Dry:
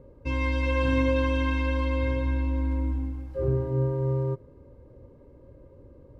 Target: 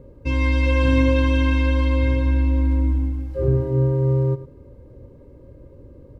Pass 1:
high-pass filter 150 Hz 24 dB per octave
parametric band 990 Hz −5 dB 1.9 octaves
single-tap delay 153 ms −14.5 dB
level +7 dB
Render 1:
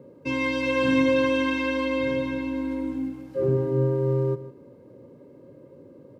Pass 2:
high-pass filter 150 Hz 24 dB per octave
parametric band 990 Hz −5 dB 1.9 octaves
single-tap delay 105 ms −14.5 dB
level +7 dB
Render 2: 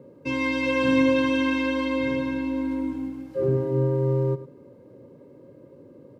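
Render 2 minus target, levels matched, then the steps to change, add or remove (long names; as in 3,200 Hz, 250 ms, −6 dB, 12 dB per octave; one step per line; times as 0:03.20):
125 Hz band −5.5 dB
remove: high-pass filter 150 Hz 24 dB per octave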